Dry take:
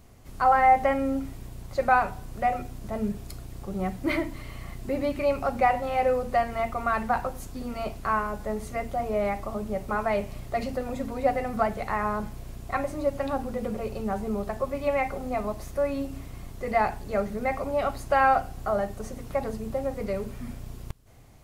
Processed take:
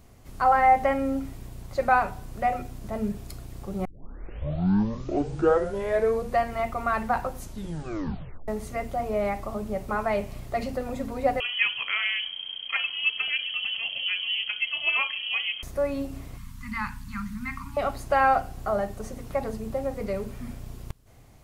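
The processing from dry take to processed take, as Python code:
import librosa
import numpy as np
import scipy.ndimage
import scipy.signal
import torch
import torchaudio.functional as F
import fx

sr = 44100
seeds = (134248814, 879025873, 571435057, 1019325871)

y = fx.freq_invert(x, sr, carrier_hz=3200, at=(11.4, 15.63))
y = fx.cheby1_bandstop(y, sr, low_hz=260.0, high_hz=930.0, order=5, at=(16.37, 17.77))
y = fx.edit(y, sr, fx.tape_start(start_s=3.85, length_s=2.55),
    fx.tape_stop(start_s=7.39, length_s=1.09), tone=tone)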